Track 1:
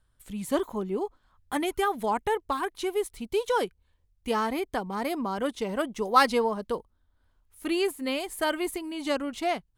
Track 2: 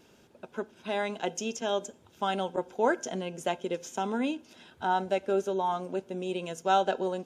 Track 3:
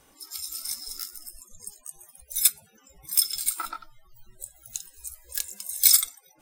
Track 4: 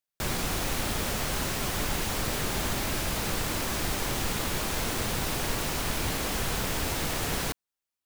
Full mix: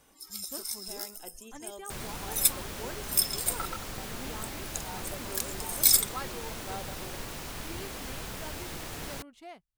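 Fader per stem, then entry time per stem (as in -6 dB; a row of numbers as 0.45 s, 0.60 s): -19.0 dB, -17.0 dB, -3.5 dB, -9.5 dB; 0.00 s, 0.00 s, 0.00 s, 1.70 s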